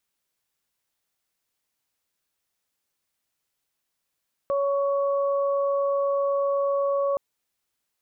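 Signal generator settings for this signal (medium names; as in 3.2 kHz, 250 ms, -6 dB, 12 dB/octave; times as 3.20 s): steady additive tone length 2.67 s, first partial 559 Hz, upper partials -8 dB, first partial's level -21.5 dB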